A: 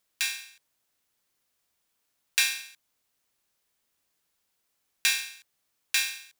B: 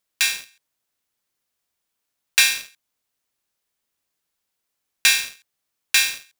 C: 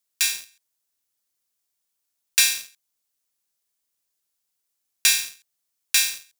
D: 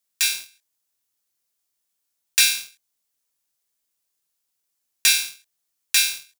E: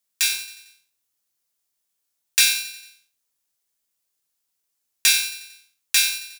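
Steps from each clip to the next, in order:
sample leveller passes 2; gain +1.5 dB
tone controls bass -1 dB, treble +9 dB; gain -7 dB
doubler 23 ms -5.5 dB
feedback echo 90 ms, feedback 55%, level -15.5 dB

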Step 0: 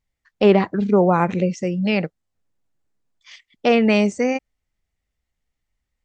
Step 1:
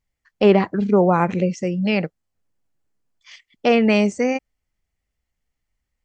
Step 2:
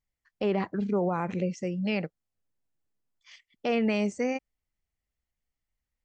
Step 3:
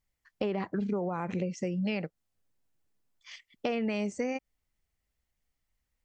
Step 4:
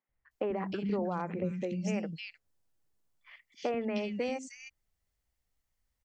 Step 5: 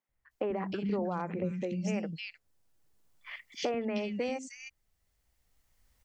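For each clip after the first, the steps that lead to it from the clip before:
notch 3700 Hz, Q 14
limiter -9.5 dBFS, peak gain reduction 6 dB; gain -8.5 dB
compressor, threshold -33 dBFS, peak gain reduction 10.5 dB; gain +4.5 dB
three bands offset in time mids, lows, highs 90/310 ms, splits 230/2400 Hz
recorder AGC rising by 7.6 dB/s

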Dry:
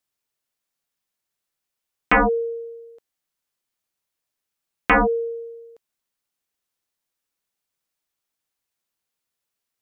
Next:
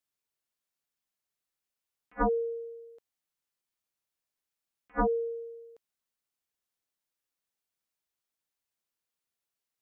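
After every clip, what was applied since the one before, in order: attack slew limiter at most 580 dB/s; gain -6.5 dB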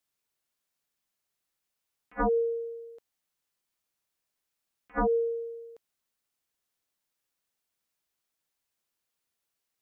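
limiter -26 dBFS, peak gain reduction 6 dB; gain +4.5 dB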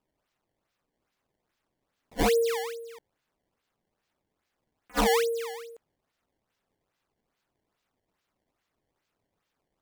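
decimation with a swept rate 20×, swing 160% 2.4 Hz; gain +2.5 dB

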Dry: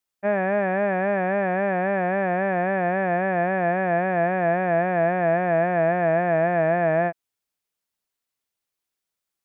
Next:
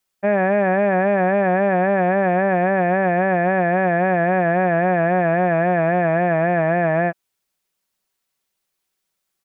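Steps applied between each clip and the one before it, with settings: comb 5.3 ms, depth 32%; limiter -16 dBFS, peak gain reduction 4.5 dB; gain +7 dB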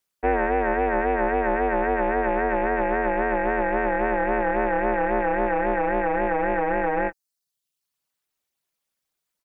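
reverb removal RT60 0.79 s; ring modulator 150 Hz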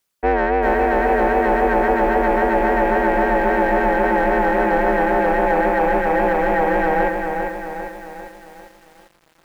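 in parallel at -4 dB: soft clip -21 dBFS, distortion -11 dB; on the sum: lo-fi delay 0.398 s, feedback 55%, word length 8-bit, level -5 dB; gain +1.5 dB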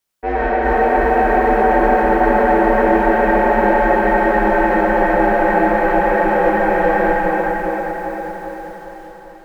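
plate-style reverb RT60 4.6 s, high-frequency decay 0.5×, DRR -7 dB; gain -5.5 dB

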